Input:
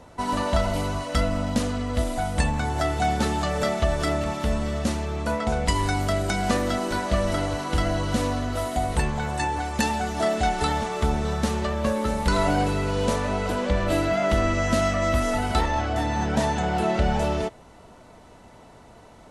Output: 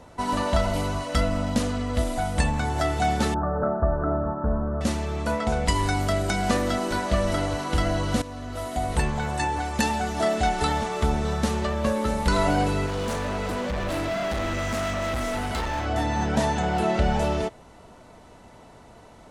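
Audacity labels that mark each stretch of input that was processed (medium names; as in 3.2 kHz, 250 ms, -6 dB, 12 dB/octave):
3.340000	4.810000	steep low-pass 1.6 kHz 96 dB/octave
8.220000	9.000000	fade in, from -15 dB
12.860000	15.860000	overload inside the chain gain 25 dB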